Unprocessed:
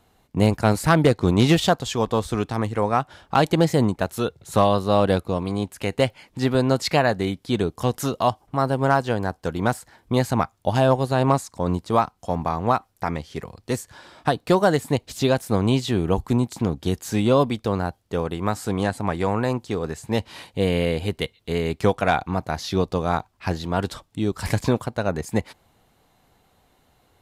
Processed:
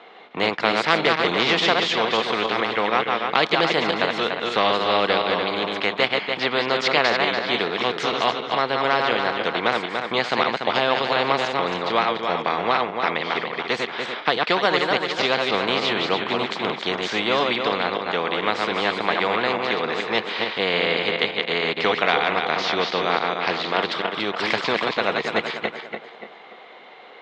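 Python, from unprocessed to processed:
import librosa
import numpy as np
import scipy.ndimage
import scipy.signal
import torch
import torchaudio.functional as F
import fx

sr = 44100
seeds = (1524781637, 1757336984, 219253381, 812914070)

y = fx.reverse_delay_fb(x, sr, ms=145, feedback_pct=52, wet_db=-5.0)
y = fx.cabinet(y, sr, low_hz=260.0, low_slope=24, high_hz=3700.0, hz=(270.0, 470.0, 720.0, 1200.0, 2100.0, 3400.0), db=(-9, 5, 3, 5, 10, 6))
y = fx.spectral_comp(y, sr, ratio=2.0)
y = y * librosa.db_to_amplitude(-1.0)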